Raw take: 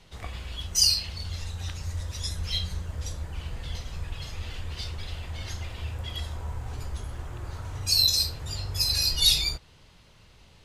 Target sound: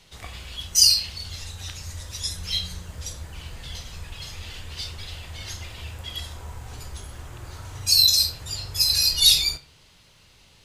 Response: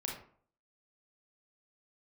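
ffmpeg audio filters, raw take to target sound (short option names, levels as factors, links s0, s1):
-filter_complex "[0:a]highshelf=f=2300:g=8.5,asplit=2[s0][s1];[s1]highpass=63[s2];[1:a]atrim=start_sample=2205,highshelf=f=12000:g=8.5[s3];[s2][s3]afir=irnorm=-1:irlink=0,volume=0.355[s4];[s0][s4]amix=inputs=2:normalize=0,volume=0.631"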